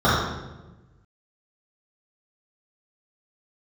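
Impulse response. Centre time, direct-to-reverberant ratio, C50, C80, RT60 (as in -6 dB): 79 ms, -13.0 dB, -1.0 dB, 2.0 dB, 1.1 s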